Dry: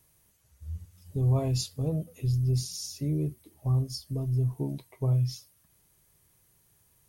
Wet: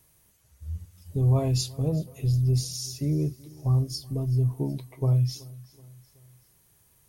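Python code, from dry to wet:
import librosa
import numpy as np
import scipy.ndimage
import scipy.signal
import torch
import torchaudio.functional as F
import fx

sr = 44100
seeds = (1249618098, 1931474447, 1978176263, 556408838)

y = fx.echo_feedback(x, sr, ms=377, feedback_pct=50, wet_db=-22.0)
y = y * librosa.db_to_amplitude(3.0)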